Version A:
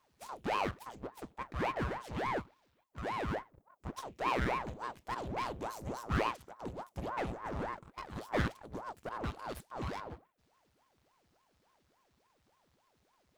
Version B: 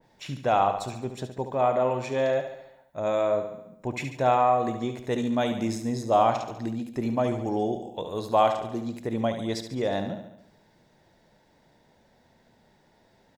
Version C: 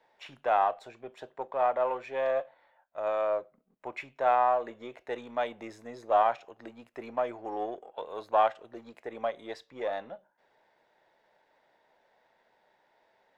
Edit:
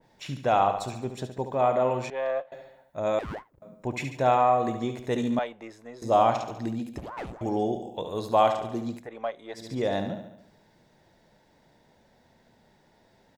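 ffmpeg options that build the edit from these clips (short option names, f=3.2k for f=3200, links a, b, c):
-filter_complex "[2:a]asplit=3[a][b][c];[0:a]asplit=2[d][e];[1:a]asplit=6[f][g][h][i][j][k];[f]atrim=end=2.102[l];[a]atrim=start=2.098:end=2.522[m];[g]atrim=start=2.518:end=3.192[n];[d]atrim=start=3.188:end=3.622[o];[h]atrim=start=3.618:end=5.392[p];[b]atrim=start=5.388:end=6.022[q];[i]atrim=start=6.018:end=6.982[r];[e]atrim=start=6.978:end=7.412[s];[j]atrim=start=7.408:end=9.09[t];[c]atrim=start=8.93:end=9.69[u];[k]atrim=start=9.53[v];[l][m]acrossfade=d=0.004:c1=hsin:c2=hsin[w];[w][n]acrossfade=d=0.004:c1=hsin:c2=hsin[x];[x][o]acrossfade=d=0.004:c1=hsin:c2=hsin[y];[y][p]acrossfade=d=0.004:c1=hsin:c2=hsin[z];[z][q]acrossfade=d=0.004:c1=hsin:c2=hsin[aa];[aa][r]acrossfade=d=0.004:c1=hsin:c2=hsin[ab];[ab][s]acrossfade=d=0.004:c1=hsin:c2=hsin[ac];[ac][t]acrossfade=d=0.004:c1=hsin:c2=hsin[ad];[ad][u]acrossfade=d=0.16:c1=tri:c2=tri[ae];[ae][v]acrossfade=d=0.16:c1=tri:c2=tri"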